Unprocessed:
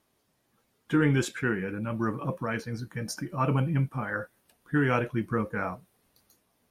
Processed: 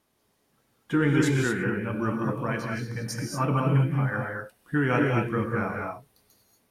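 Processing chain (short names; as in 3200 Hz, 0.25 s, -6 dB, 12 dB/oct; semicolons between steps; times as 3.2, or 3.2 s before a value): non-linear reverb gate 0.26 s rising, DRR 0.5 dB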